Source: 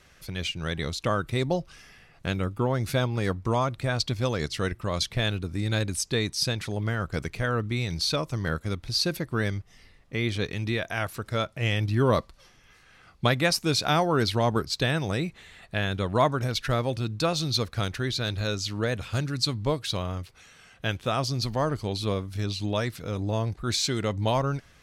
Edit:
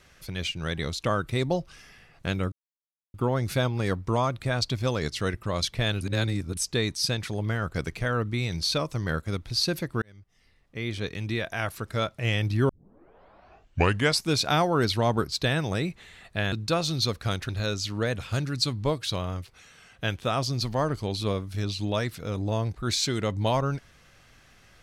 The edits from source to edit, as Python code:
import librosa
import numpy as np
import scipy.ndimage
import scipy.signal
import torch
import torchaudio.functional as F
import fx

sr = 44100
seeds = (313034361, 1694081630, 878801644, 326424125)

y = fx.edit(x, sr, fx.insert_silence(at_s=2.52, length_s=0.62),
    fx.reverse_span(start_s=5.39, length_s=0.56),
    fx.fade_in_span(start_s=9.4, length_s=2.02, curve='qsin'),
    fx.tape_start(start_s=12.07, length_s=1.58),
    fx.cut(start_s=15.9, length_s=1.14),
    fx.cut(start_s=18.01, length_s=0.29), tone=tone)